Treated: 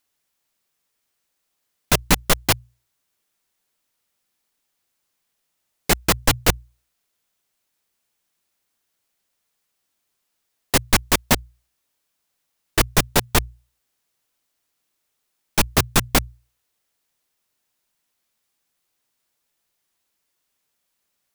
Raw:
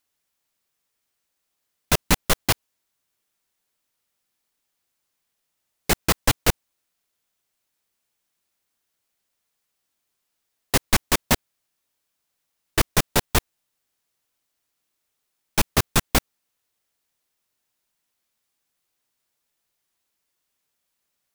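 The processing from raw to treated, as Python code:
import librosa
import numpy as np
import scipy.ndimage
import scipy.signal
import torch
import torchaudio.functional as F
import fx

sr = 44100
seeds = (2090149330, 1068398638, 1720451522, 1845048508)

y = fx.hum_notches(x, sr, base_hz=60, count=2)
y = y * librosa.db_to_amplitude(2.5)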